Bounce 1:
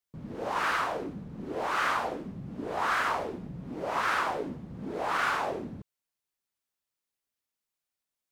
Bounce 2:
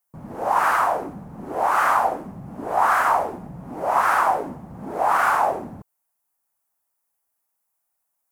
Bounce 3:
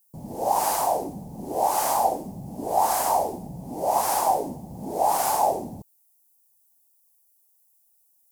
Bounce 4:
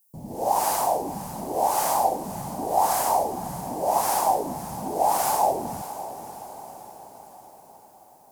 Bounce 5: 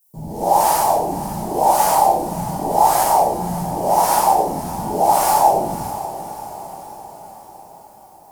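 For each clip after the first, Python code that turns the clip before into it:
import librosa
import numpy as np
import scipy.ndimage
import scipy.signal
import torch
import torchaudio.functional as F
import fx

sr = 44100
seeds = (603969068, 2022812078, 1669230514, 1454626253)

y1 = fx.curve_eq(x, sr, hz=(460.0, 770.0, 3700.0, 11000.0), db=(0, 12, -7, 11))
y1 = y1 * 10.0 ** (3.0 / 20.0)
y2 = fx.curve_eq(y1, sr, hz=(860.0, 1300.0, 4800.0, 15000.0), db=(0, -22, 8, 13))
y3 = fx.echo_diffused(y2, sr, ms=577, feedback_pct=56, wet_db=-13.0)
y4 = fx.room_shoebox(y3, sr, seeds[0], volume_m3=57.0, walls='mixed', distance_m=1.3)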